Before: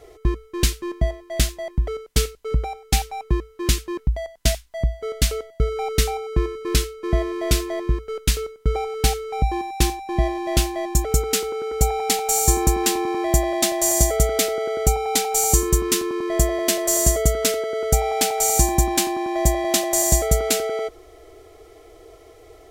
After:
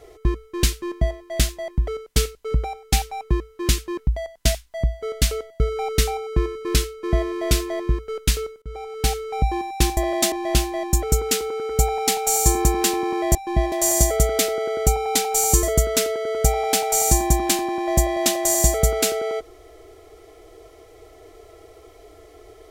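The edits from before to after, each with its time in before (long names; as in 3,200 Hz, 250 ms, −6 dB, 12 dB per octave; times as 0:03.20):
0:08.62–0:09.20: fade in, from −20.5 dB
0:09.97–0:10.34: swap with 0:13.37–0:13.72
0:15.63–0:17.11: remove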